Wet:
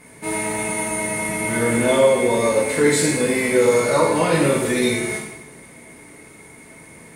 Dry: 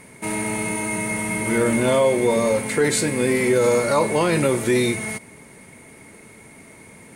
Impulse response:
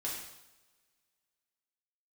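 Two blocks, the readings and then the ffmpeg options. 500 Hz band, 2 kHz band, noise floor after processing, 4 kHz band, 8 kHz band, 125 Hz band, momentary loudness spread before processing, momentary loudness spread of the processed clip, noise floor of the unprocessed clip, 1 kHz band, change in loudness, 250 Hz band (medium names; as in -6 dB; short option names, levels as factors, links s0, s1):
+1.5 dB, +2.0 dB, -44 dBFS, +2.0 dB, +2.5 dB, 0.0 dB, 7 LU, 8 LU, -46 dBFS, +2.0 dB, +1.5 dB, +0.5 dB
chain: -filter_complex "[1:a]atrim=start_sample=2205[s0];[0:a][s0]afir=irnorm=-1:irlink=0"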